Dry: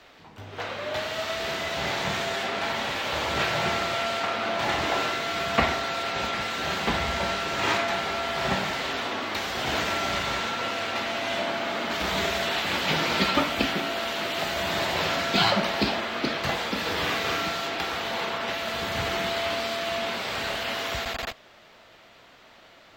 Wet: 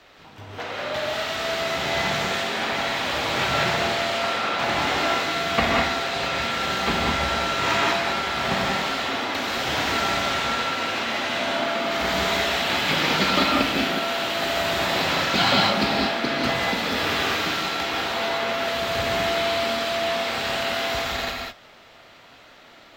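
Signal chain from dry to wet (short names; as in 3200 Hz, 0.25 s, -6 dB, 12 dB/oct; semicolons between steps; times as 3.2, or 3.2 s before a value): non-linear reverb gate 0.22 s rising, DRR -1.5 dB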